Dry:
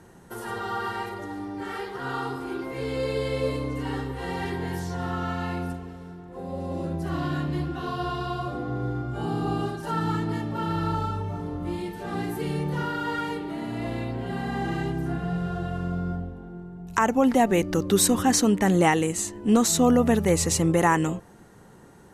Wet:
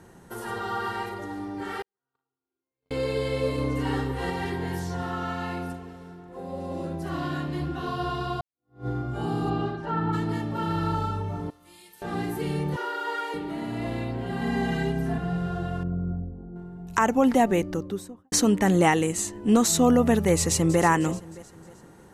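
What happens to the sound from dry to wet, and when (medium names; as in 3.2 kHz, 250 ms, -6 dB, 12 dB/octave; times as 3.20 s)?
1.82–2.91 s: gate -24 dBFS, range -58 dB
3.58–4.30 s: gain +3 dB
5.02–7.62 s: bass shelf 160 Hz -7 dB
8.41–8.87 s: fade in exponential
9.49–10.12 s: low-pass 4.7 kHz -> 1.8 kHz
11.50–12.02 s: pre-emphasis filter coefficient 0.97
12.76–13.34 s: elliptic high-pass 350 Hz
14.41–15.18 s: comb 4.6 ms, depth 91%
15.83–16.56 s: resonances exaggerated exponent 1.5
17.32–18.32 s: studio fade out
20.38–20.80 s: echo throw 310 ms, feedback 45%, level -14.5 dB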